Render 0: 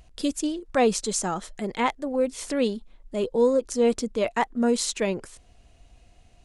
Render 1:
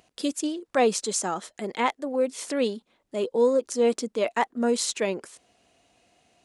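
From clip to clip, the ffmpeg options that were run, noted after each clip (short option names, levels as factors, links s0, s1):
-af "highpass=240"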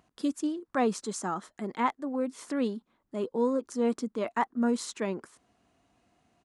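-af "firequalizer=gain_entry='entry(260,0);entry(510,-9);entry(1100,0);entry(2500,-11)':delay=0.05:min_phase=1"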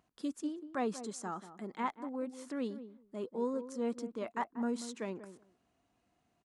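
-filter_complex "[0:a]asplit=2[s0][s1];[s1]adelay=187,lowpass=f=840:p=1,volume=0.282,asplit=2[s2][s3];[s3]adelay=187,lowpass=f=840:p=1,volume=0.15[s4];[s0][s2][s4]amix=inputs=3:normalize=0,volume=0.398"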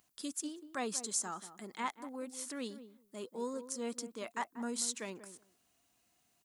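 -af "crystalizer=i=7.5:c=0,volume=0.531"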